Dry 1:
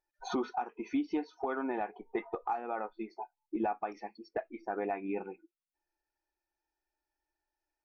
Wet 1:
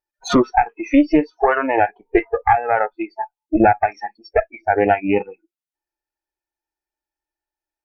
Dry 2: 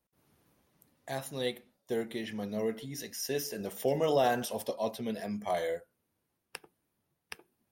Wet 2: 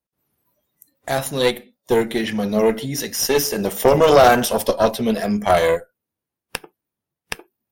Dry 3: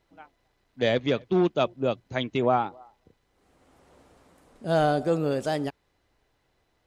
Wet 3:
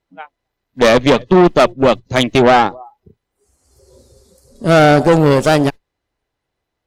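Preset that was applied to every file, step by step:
tube stage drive 25 dB, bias 0.8; one-sided clip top -30 dBFS, bottom -22.5 dBFS; spectral noise reduction 21 dB; normalise peaks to -1.5 dBFS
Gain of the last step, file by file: +24.0, +21.0, +20.5 dB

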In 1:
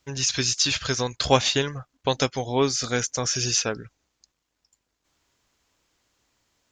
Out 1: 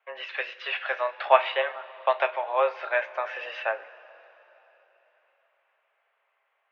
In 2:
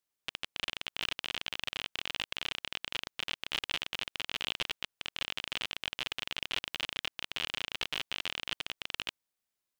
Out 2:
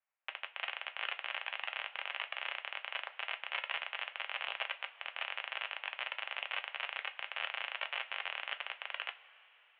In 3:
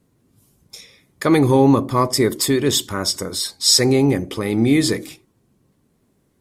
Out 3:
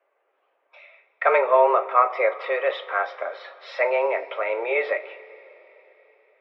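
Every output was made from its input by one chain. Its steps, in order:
two-slope reverb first 0.21 s, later 4 s, from -22 dB, DRR 7 dB; mistuned SSB +120 Hz 460–2500 Hz; gain +2 dB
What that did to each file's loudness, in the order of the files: -3.5, -3.0, -5.5 LU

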